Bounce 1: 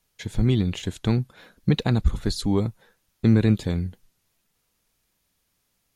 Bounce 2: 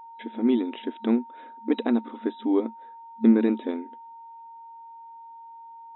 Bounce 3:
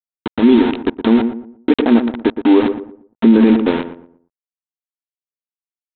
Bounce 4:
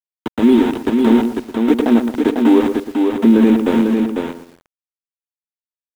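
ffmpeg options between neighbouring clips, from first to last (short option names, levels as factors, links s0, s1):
-af "aemphasis=mode=reproduction:type=riaa,afftfilt=real='re*between(b*sr/4096,220,3900)':imag='im*between(b*sr/4096,220,3900)':win_size=4096:overlap=0.75,aeval=exprs='val(0)+0.01*sin(2*PI*920*n/s)':c=same,volume=0.794"
-filter_complex "[0:a]aresample=8000,aeval=exprs='val(0)*gte(abs(val(0)),0.0316)':c=same,aresample=44100,asplit=2[s0][s1];[s1]adelay=117,lowpass=f=1100:p=1,volume=0.316,asplit=2[s2][s3];[s3]adelay=117,lowpass=f=1100:p=1,volume=0.32,asplit=2[s4][s5];[s5]adelay=117,lowpass=f=1100:p=1,volume=0.32,asplit=2[s6][s7];[s7]adelay=117,lowpass=f=1100:p=1,volume=0.32[s8];[s0][s2][s4][s6][s8]amix=inputs=5:normalize=0,alimiter=level_in=5.31:limit=0.891:release=50:level=0:latency=1,volume=0.891"
-filter_complex "[0:a]acrossover=split=140|1500[s0][s1][s2];[s2]asoftclip=type=hard:threshold=0.0376[s3];[s0][s1][s3]amix=inputs=3:normalize=0,acrusher=bits=6:mix=0:aa=0.000001,aecho=1:1:498:0.596,volume=0.891"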